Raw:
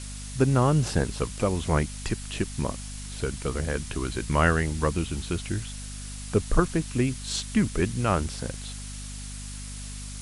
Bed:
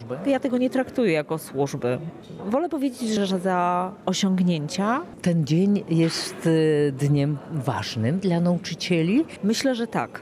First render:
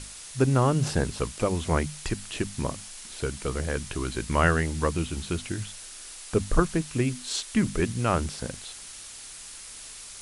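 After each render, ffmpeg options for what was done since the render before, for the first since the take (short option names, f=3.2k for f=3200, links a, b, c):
-af "bandreject=f=50:t=h:w=6,bandreject=f=100:t=h:w=6,bandreject=f=150:t=h:w=6,bandreject=f=200:t=h:w=6,bandreject=f=250:t=h:w=6"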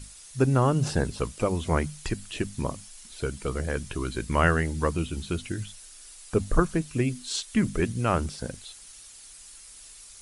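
-af "afftdn=nr=9:nf=-43"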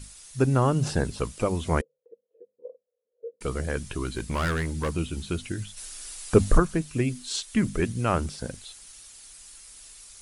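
-filter_complex "[0:a]asettb=1/sr,asplit=3[a][b][c];[a]atrim=end=1.814[d];[b]atrim=start=1.81:end=3.41,asetpts=PTS-STARTPTS,afade=t=in:d=0.004:c=qsin,afade=t=out:st=1.596:d=0.004:c=qsin,asuperpass=centerf=490:order=4:qfactor=7.7[e];[c]atrim=start=3.406[f];[d][e]acrossfade=d=0.004:c1=hsin:c2=qsin[g];[g][f]acrossfade=d=0.004:c1=qsin:c2=hsin,asettb=1/sr,asplit=3[h][i][j];[h]atrim=end=4.054[k];[i]atrim=start=4.05:end=4.93,asetpts=PTS-STARTPTS,afade=t=in:d=0.004:c=qsin,afade=t=out:st=0.876:d=0.004:c=qsin,asoftclip=type=hard:threshold=-23dB[l];[j]atrim=start=4.926[m];[k][l]acrossfade=d=0.004:c1=hsin:c2=qsin[n];[n][m]acrossfade=d=0.004:c1=qsin:c2=hsin,asplit=3[o][p][q];[o]afade=t=out:st=5.76:d=0.02[r];[p]acontrast=86,afade=t=in:st=5.76:d=0.02,afade=t=out:st=6.57:d=0.02[s];[q]afade=t=in:st=6.57:d=0.02[t];[r][s][t]amix=inputs=3:normalize=0"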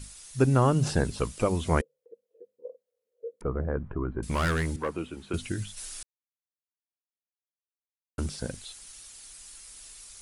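-filter_complex "[0:a]asettb=1/sr,asplit=3[a][b][c];[a]atrim=end=3.414[d];[b]atrim=start=3.41:end=4.23,asetpts=PTS-STARTPTS,afade=t=in:d=0.004:c=qsin,afade=t=out:st=0.816:d=0.004:c=qsin,lowpass=f=1.3k:w=0.5412,lowpass=f=1.3k:w=1.3066[e];[c]atrim=start=4.226[f];[d][e]acrossfade=d=0.004:c1=hsin:c2=qsin[g];[g][f]acrossfade=d=0.004:c1=qsin:c2=hsin,asettb=1/sr,asplit=3[h][i][j];[h]atrim=end=4.764[k];[i]atrim=start=4.76:end=5.34,asetpts=PTS-STARTPTS,afade=t=in:d=0.004:c=qsin,afade=t=out:st=0.576:d=0.004:c=qsin,acrossover=split=260 2300:gain=0.178 1 0.2[l][m][n];[l][m][n]amix=inputs=3:normalize=0[o];[j]atrim=start=5.336[p];[k][o]acrossfade=d=0.004:c1=hsin:c2=qsin[q];[q][p]acrossfade=d=0.004:c1=qsin:c2=hsin,asplit=3[r][s][t];[r]atrim=end=6.03,asetpts=PTS-STARTPTS,afade=t=out:st=6.026:d=0.004:c=hsin[u];[s]atrim=start=6.03:end=8.18,asetpts=PTS-STARTPTS,volume=0[v];[t]atrim=start=8.18,asetpts=PTS-STARTPTS,afade=t=in:d=0.004:c=hsin[w];[u][v][w]concat=n=3:v=0:a=1"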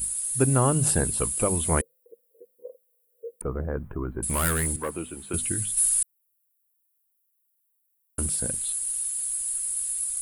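-af "aexciter=amount=12.1:drive=6.8:freq=8.4k"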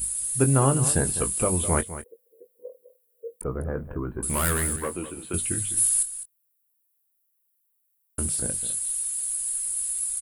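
-filter_complex "[0:a]asplit=2[a][b];[b]adelay=22,volume=-10dB[c];[a][c]amix=inputs=2:normalize=0,aecho=1:1:205:0.224"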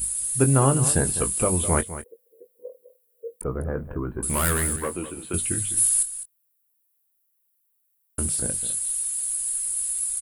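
-af "volume=1.5dB"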